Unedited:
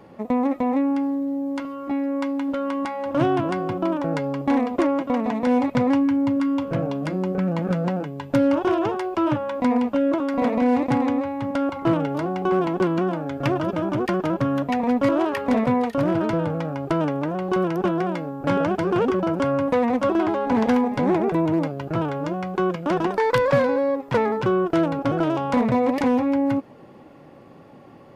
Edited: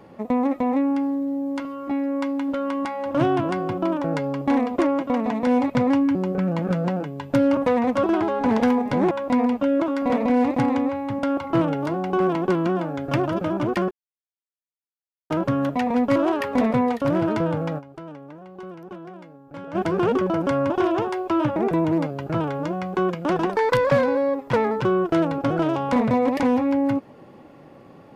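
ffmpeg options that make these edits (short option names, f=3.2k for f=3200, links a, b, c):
-filter_complex "[0:a]asplit=9[a][b][c][d][e][f][g][h][i];[a]atrim=end=6.152[j];[b]atrim=start=7.148:end=8.572[k];[c]atrim=start=19.628:end=21.172[l];[d]atrim=start=9.428:end=14.23,asetpts=PTS-STARTPTS,afade=t=out:st=4.798:d=0.004:c=hsin,apad=pad_dur=1.39[m];[e]atrim=start=14.23:end=16.86,asetpts=PTS-STARTPTS,afade=t=in:d=0.004:c=hsin,afade=t=out:st=2.48:d=0.15:c=exp:silence=0.158489[n];[f]atrim=start=16.86:end=18.54,asetpts=PTS-STARTPTS,volume=-16dB[o];[g]atrim=start=18.54:end=19.632,asetpts=PTS-STARTPTS,afade=t=in:d=0.15:c=exp:silence=0.158489[p];[h]atrim=start=8.568:end=9.432[q];[i]atrim=start=21.168[r];[j][k]acrossfade=d=0.004:c1=hsin:c2=hsin[s];[s][l]acrossfade=d=0.004:c1=hsin:c2=hsin[t];[m][n][o][p]concat=n=4:v=0:a=1[u];[t][u]acrossfade=d=0.004:c1=hsin:c2=hsin[v];[v][q]acrossfade=d=0.004:c1=hsin:c2=hsin[w];[w][r]acrossfade=d=0.004:c1=hsin:c2=hsin"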